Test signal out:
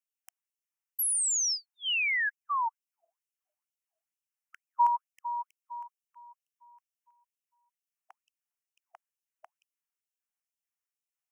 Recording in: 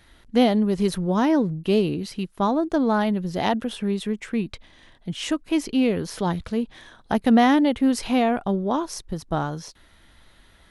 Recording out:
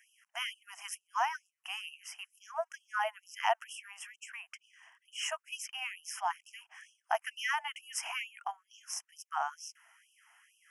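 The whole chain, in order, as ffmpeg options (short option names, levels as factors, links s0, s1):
-af "asuperstop=centerf=4000:order=12:qfactor=2,afftfilt=real='re*gte(b*sr/1024,630*pow(2600/630,0.5+0.5*sin(2*PI*2.2*pts/sr)))':imag='im*gte(b*sr/1024,630*pow(2600/630,0.5+0.5*sin(2*PI*2.2*pts/sr)))':win_size=1024:overlap=0.75,volume=0.668"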